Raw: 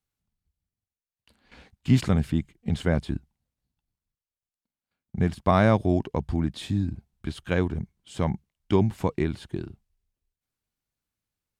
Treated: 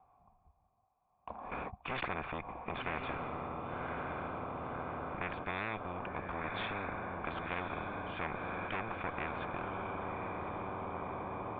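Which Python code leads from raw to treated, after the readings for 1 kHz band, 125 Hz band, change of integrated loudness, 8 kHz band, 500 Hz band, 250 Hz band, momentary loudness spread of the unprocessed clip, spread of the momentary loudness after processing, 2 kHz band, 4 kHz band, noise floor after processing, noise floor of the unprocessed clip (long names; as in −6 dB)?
−3.5 dB, −19.0 dB, −13.5 dB, below −30 dB, −11.5 dB, −17.0 dB, 16 LU, 3 LU, −2.0 dB, −8.0 dB, −74 dBFS, below −85 dBFS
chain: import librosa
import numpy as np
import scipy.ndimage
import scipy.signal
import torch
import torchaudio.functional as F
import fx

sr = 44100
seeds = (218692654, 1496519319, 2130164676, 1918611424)

p1 = x * (1.0 - 0.43 / 2.0 + 0.43 / 2.0 * np.cos(2.0 * np.pi * 0.59 * (np.arange(len(x)) / sr)))
p2 = fx.spec_box(p1, sr, start_s=4.33, length_s=1.96, low_hz=220.0, high_hz=1400.0, gain_db=-17)
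p3 = p2 + fx.echo_diffused(p2, sr, ms=1088, feedback_pct=59, wet_db=-11.0, dry=0)
p4 = fx.tube_stage(p3, sr, drive_db=23.0, bias=0.45)
p5 = fx.formant_cascade(p4, sr, vowel='a')
p6 = fx.spectral_comp(p5, sr, ratio=10.0)
y = p6 * librosa.db_to_amplitude(11.5)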